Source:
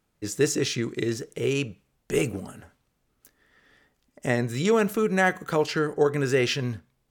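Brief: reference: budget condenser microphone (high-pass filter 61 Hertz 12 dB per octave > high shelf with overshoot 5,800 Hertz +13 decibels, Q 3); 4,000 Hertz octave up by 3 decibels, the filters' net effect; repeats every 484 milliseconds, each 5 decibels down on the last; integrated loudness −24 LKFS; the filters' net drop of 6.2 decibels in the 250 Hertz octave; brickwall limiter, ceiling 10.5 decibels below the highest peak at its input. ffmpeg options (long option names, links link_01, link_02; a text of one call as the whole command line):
ffmpeg -i in.wav -af "equalizer=frequency=250:width_type=o:gain=-9,equalizer=frequency=4000:width_type=o:gain=8.5,alimiter=limit=-18.5dB:level=0:latency=1,highpass=61,highshelf=frequency=5800:width_type=q:width=3:gain=13,aecho=1:1:484|968|1452|1936|2420|2904|3388:0.562|0.315|0.176|0.0988|0.0553|0.031|0.0173,volume=-1dB" out.wav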